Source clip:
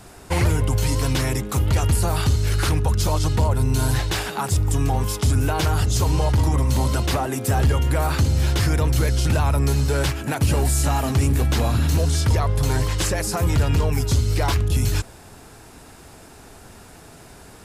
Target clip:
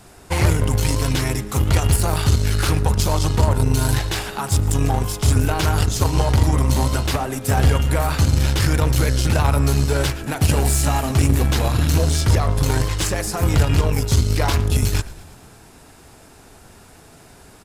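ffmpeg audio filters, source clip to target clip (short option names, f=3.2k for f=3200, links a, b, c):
-filter_complex "[0:a]bandreject=f=58.47:t=h:w=4,bandreject=f=116.94:t=h:w=4,bandreject=f=175.41:t=h:w=4,bandreject=f=233.88:t=h:w=4,bandreject=f=292.35:t=h:w=4,bandreject=f=350.82:t=h:w=4,bandreject=f=409.29:t=h:w=4,bandreject=f=467.76:t=h:w=4,bandreject=f=526.23:t=h:w=4,bandreject=f=584.7:t=h:w=4,bandreject=f=643.17:t=h:w=4,bandreject=f=701.64:t=h:w=4,bandreject=f=760.11:t=h:w=4,bandreject=f=818.58:t=h:w=4,bandreject=f=877.05:t=h:w=4,bandreject=f=935.52:t=h:w=4,bandreject=f=993.99:t=h:w=4,bandreject=f=1.05246k:t=h:w=4,bandreject=f=1.11093k:t=h:w=4,bandreject=f=1.1694k:t=h:w=4,bandreject=f=1.22787k:t=h:w=4,bandreject=f=1.28634k:t=h:w=4,bandreject=f=1.34481k:t=h:w=4,bandreject=f=1.40328k:t=h:w=4,bandreject=f=1.46175k:t=h:w=4,bandreject=f=1.52022k:t=h:w=4,bandreject=f=1.57869k:t=h:w=4,bandreject=f=1.63716k:t=h:w=4,bandreject=f=1.69563k:t=h:w=4,bandreject=f=1.7541k:t=h:w=4,bandreject=f=1.81257k:t=h:w=4,bandreject=f=1.87104k:t=h:w=4,bandreject=f=1.92951k:t=h:w=4,aeval=exprs='0.355*(cos(1*acos(clip(val(0)/0.355,-1,1)))-cos(1*PI/2))+0.0708*(cos(3*acos(clip(val(0)/0.355,-1,1)))-cos(3*PI/2))':c=same,asplit=7[a][b][c][d][e][f][g];[b]adelay=113,afreqshift=-43,volume=-20.5dB[h];[c]adelay=226,afreqshift=-86,volume=-24.2dB[i];[d]adelay=339,afreqshift=-129,volume=-28dB[j];[e]adelay=452,afreqshift=-172,volume=-31.7dB[k];[f]adelay=565,afreqshift=-215,volume=-35.5dB[l];[g]adelay=678,afreqshift=-258,volume=-39.2dB[m];[a][h][i][j][k][l][m]amix=inputs=7:normalize=0,volume=6.5dB"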